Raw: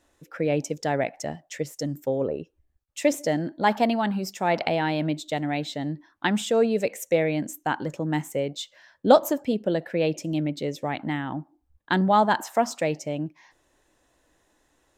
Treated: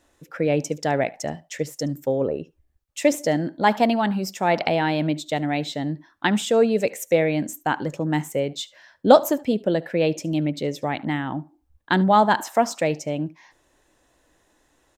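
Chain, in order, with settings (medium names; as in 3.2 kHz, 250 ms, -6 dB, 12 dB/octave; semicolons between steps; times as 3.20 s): delay 73 ms -23 dB; trim +3 dB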